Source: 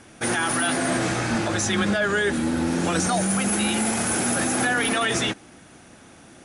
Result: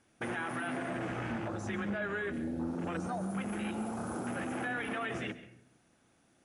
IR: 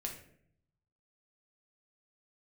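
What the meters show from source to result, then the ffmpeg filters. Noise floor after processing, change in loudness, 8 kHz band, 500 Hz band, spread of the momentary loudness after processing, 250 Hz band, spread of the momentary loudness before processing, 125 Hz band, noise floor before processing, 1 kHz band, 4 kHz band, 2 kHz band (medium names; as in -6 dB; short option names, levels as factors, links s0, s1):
-69 dBFS, -14.0 dB, -28.0 dB, -12.5 dB, 2 LU, -12.0 dB, 3 LU, -12.0 dB, -49 dBFS, -13.0 dB, -21.5 dB, -13.5 dB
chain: -filter_complex "[0:a]afwtdn=0.0447,acompressor=threshold=0.0224:ratio=2.5,asplit=2[s0][s1];[1:a]atrim=start_sample=2205,adelay=134[s2];[s1][s2]afir=irnorm=-1:irlink=0,volume=0.224[s3];[s0][s3]amix=inputs=2:normalize=0,volume=0.596"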